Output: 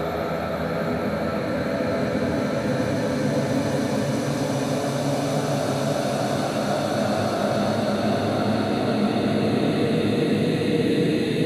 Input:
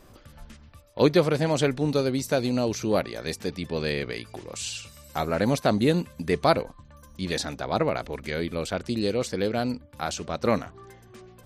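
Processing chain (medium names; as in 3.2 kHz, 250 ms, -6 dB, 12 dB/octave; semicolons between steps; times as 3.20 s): Paulstretch 19×, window 0.50 s, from 5.29 s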